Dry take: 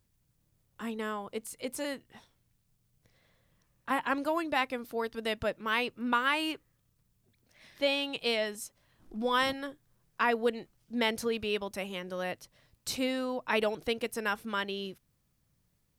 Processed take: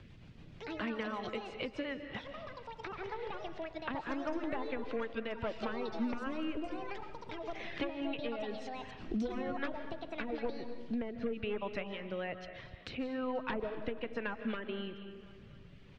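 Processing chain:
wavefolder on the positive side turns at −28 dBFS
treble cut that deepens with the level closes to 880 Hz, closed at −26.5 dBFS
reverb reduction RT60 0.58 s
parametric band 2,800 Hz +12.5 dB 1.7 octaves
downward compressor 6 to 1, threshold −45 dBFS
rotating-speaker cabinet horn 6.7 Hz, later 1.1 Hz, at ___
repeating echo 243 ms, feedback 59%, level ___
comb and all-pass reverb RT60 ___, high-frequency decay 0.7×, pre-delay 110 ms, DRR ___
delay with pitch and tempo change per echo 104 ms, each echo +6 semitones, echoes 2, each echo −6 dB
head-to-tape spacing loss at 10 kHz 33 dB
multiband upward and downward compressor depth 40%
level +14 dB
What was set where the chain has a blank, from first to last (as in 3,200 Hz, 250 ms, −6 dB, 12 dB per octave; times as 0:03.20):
0:06.11, −23 dB, 1.1 s, 9.5 dB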